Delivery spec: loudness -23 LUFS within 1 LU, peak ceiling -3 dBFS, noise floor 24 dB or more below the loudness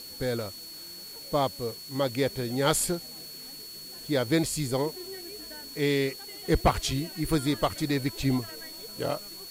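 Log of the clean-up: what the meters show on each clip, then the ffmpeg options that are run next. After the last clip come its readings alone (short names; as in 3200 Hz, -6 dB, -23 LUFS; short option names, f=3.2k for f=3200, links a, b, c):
steady tone 4400 Hz; tone level -42 dBFS; noise floor -43 dBFS; noise floor target -53 dBFS; loudness -29.0 LUFS; peak -11.0 dBFS; loudness target -23.0 LUFS
-> -af "bandreject=f=4.4k:w=30"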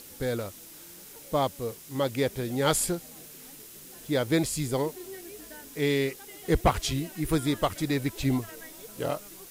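steady tone none; noise floor -48 dBFS; noise floor target -53 dBFS
-> -af "afftdn=nr=6:nf=-48"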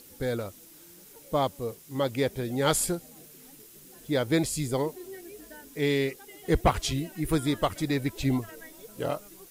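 noise floor -52 dBFS; noise floor target -53 dBFS
-> -af "afftdn=nr=6:nf=-52"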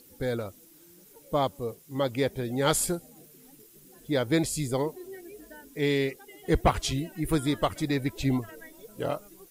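noise floor -55 dBFS; loudness -29.0 LUFS; peak -11.5 dBFS; loudness target -23.0 LUFS
-> -af "volume=6dB"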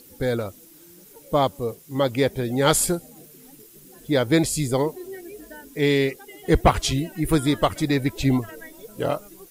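loudness -23.0 LUFS; peak -5.5 dBFS; noise floor -49 dBFS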